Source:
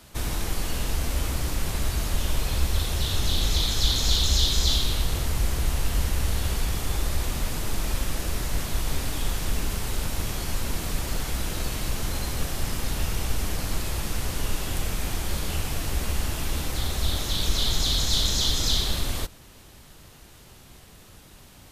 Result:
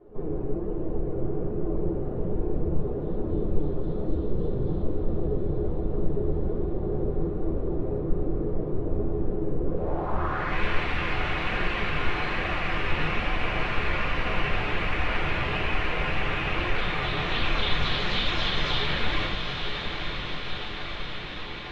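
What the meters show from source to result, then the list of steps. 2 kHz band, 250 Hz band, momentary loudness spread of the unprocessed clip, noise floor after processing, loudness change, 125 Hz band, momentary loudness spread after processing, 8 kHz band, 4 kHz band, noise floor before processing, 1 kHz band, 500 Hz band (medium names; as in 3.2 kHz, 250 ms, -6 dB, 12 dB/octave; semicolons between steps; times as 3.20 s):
+7.0 dB, +5.0 dB, 8 LU, -33 dBFS, -1.5 dB, -2.0 dB, 6 LU, under -25 dB, -5.5 dB, -50 dBFS, +5.0 dB, +8.0 dB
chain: tone controls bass -14 dB, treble -10 dB; in parallel at +2 dB: compression, threshold -43 dBFS, peak gain reduction 17 dB; on the sum: whisper effect; simulated room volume 49 m³, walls mixed, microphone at 0.93 m; flange 1.2 Hz, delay 2.6 ms, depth 5.8 ms, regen +54%; on a send: echo that smears into a reverb 918 ms, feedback 70%, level -6 dB; on the sum: low-pass sweep 400 Hz -> 2.4 kHz, 9.66–10.65 s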